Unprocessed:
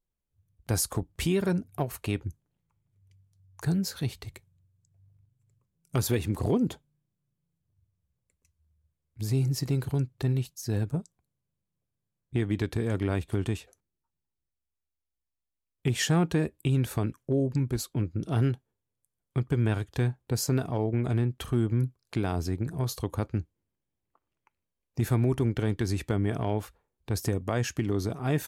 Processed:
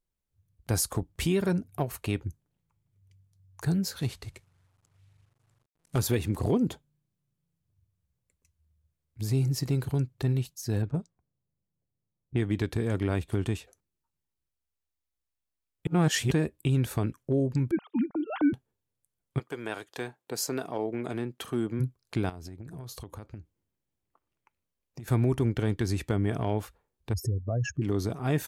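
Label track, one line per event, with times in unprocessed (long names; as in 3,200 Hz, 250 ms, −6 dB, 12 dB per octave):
3.990000	5.990000	variable-slope delta modulation 64 kbit/s
10.820000	12.560000	low-pass that shuts in the quiet parts closes to 790 Hz, open at −23.5 dBFS
15.870000	16.310000	reverse
17.710000	18.530000	three sine waves on the formant tracks
19.380000	21.790000	high-pass filter 510 Hz → 200 Hz
22.290000	25.080000	downward compressor 16 to 1, threshold −37 dBFS
27.130000	27.820000	expanding power law on the bin magnitudes exponent 2.8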